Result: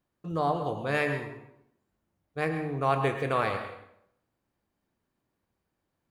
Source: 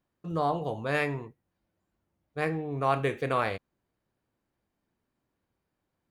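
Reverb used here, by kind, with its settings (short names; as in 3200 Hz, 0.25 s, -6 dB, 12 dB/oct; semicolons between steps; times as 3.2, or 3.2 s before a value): plate-style reverb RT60 0.73 s, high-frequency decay 0.8×, pre-delay 95 ms, DRR 7 dB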